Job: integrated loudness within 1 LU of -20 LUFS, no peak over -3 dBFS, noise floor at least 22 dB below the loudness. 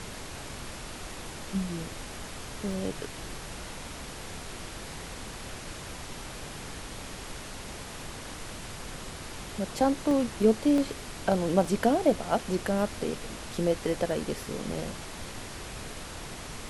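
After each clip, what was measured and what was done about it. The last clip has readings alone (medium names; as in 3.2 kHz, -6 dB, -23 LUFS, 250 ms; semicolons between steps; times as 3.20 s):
dropouts 6; longest dropout 1.4 ms; noise floor -41 dBFS; noise floor target -54 dBFS; loudness -32.0 LUFS; peak level -10.0 dBFS; loudness target -20.0 LUFS
-> interpolate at 2.72/10.11/10.78/11.65/13.55/14.11 s, 1.4 ms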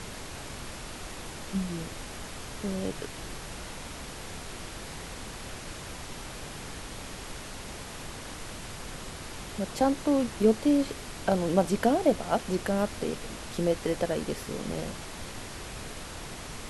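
dropouts 0; noise floor -41 dBFS; noise floor target -54 dBFS
-> noise print and reduce 13 dB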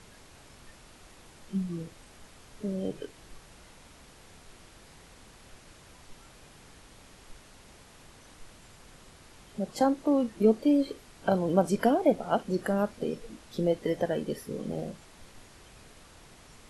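noise floor -54 dBFS; loudness -29.0 LUFS; peak level -10.5 dBFS; loudness target -20.0 LUFS
-> trim +9 dB; peak limiter -3 dBFS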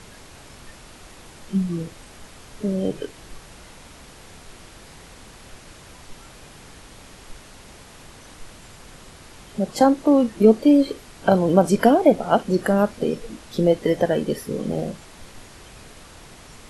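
loudness -20.5 LUFS; peak level -3.0 dBFS; noise floor -45 dBFS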